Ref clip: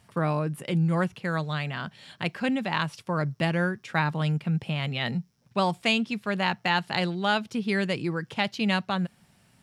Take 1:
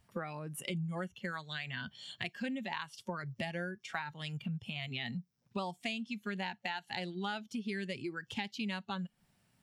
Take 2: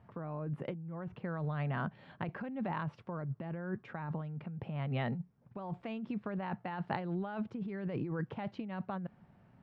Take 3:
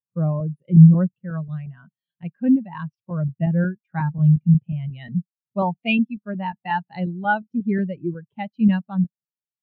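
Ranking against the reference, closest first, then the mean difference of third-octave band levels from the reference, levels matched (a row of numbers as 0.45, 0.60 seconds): 1, 2, 3; 4.0, 7.5, 14.5 decibels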